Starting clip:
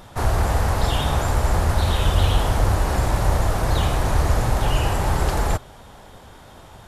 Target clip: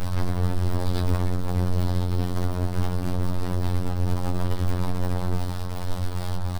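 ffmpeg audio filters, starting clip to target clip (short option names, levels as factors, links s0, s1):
-filter_complex "[0:a]aemphasis=mode=reproduction:type=bsi,bandreject=f=112.1:t=h:w=4,bandreject=f=224.2:t=h:w=4,bandreject=f=336.3:t=h:w=4,bandreject=f=448.4:t=h:w=4,bandreject=f=560.5:t=h:w=4,bandreject=f=672.6:t=h:w=4,bandreject=f=784.7:t=h:w=4,bandreject=f=896.8:t=h:w=4,bandreject=f=1008.9:t=h:w=4,bandreject=f=1121:t=h:w=4,bandreject=f=1233.1:t=h:w=4,bandreject=f=1345.2:t=h:w=4,bandreject=f=1457.3:t=h:w=4,bandreject=f=1569.4:t=h:w=4,bandreject=f=1681.5:t=h:w=4,bandreject=f=1793.6:t=h:w=4,bandreject=f=1905.7:t=h:w=4,bandreject=f=2017.8:t=h:w=4,bandreject=f=2129.9:t=h:w=4,bandreject=f=2242:t=h:w=4,bandreject=f=2354.1:t=h:w=4,acompressor=threshold=0.316:ratio=20,aeval=exprs='(tanh(44.7*val(0)+0.2)-tanh(0.2))/44.7':c=same,asplit=4[s0][s1][s2][s3];[s1]asetrate=22050,aresample=44100,atempo=2,volume=0.316[s4];[s2]asetrate=52444,aresample=44100,atempo=0.840896,volume=0.316[s5];[s3]asetrate=55563,aresample=44100,atempo=0.793701,volume=0.794[s6];[s0][s4][s5][s6]amix=inputs=4:normalize=0,acrusher=bits=8:dc=4:mix=0:aa=0.000001,afftfilt=real='hypot(re,im)*cos(PI*b)':imag='0':win_size=2048:overlap=0.75,asplit=2[s7][s8];[s8]adelay=23,volume=0.501[s9];[s7][s9]amix=inputs=2:normalize=0,asetrate=45938,aresample=44100,volume=2.66"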